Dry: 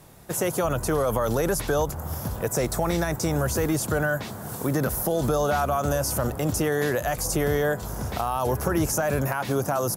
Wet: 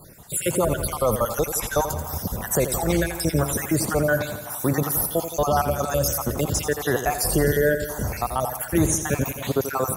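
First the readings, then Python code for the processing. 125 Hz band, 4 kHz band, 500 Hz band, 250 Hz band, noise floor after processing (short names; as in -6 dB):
+1.0 dB, +2.5 dB, +1.5 dB, +1.5 dB, -36 dBFS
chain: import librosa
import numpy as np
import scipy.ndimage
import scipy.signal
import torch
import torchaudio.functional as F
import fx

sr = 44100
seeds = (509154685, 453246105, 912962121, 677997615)

p1 = fx.spec_dropout(x, sr, seeds[0], share_pct=54)
p2 = fx.high_shelf(p1, sr, hz=6400.0, db=5.5)
p3 = p2 + fx.echo_feedback(p2, sr, ms=84, feedback_pct=60, wet_db=-10, dry=0)
y = p3 * librosa.db_to_amplitude(4.0)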